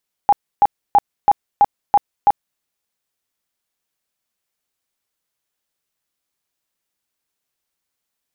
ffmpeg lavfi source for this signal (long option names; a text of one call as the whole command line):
ffmpeg -f lavfi -i "aevalsrc='0.447*sin(2*PI*817*mod(t,0.33))*lt(mod(t,0.33),29/817)':duration=2.31:sample_rate=44100" out.wav